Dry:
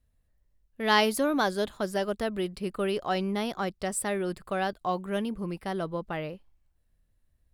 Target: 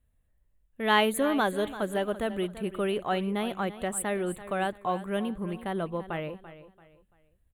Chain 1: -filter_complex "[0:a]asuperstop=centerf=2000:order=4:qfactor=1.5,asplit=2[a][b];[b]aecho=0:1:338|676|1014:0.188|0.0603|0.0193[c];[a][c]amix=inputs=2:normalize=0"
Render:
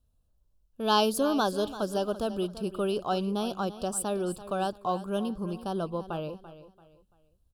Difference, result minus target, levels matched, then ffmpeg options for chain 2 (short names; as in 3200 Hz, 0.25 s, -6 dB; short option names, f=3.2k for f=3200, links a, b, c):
2000 Hz band -8.0 dB
-filter_complex "[0:a]asuperstop=centerf=5200:order=4:qfactor=1.5,asplit=2[a][b];[b]aecho=0:1:338|676|1014:0.188|0.0603|0.0193[c];[a][c]amix=inputs=2:normalize=0"